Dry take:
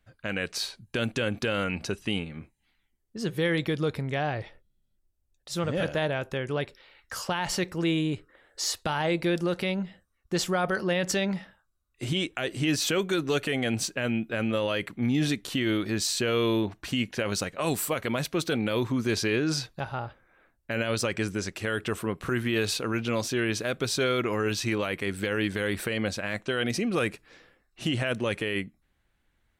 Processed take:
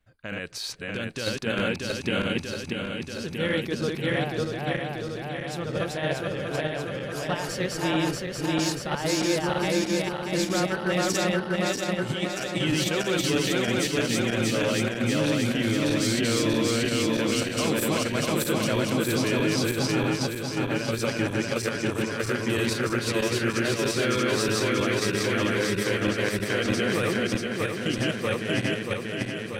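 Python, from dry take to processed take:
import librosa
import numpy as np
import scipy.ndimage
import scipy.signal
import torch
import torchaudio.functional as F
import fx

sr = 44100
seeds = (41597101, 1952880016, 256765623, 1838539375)

p1 = fx.reverse_delay_fb(x, sr, ms=318, feedback_pct=83, wet_db=0.0)
p2 = fx.level_steps(p1, sr, step_db=12)
p3 = p1 + (p2 * librosa.db_to_amplitude(0.0))
y = p3 * librosa.db_to_amplitude(-7.5)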